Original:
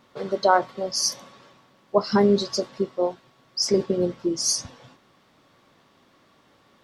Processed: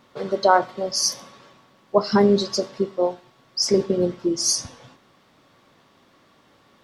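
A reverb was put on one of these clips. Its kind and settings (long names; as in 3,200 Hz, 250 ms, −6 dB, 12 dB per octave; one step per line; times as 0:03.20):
four-comb reverb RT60 0.47 s, combs from 26 ms, DRR 18.5 dB
level +2 dB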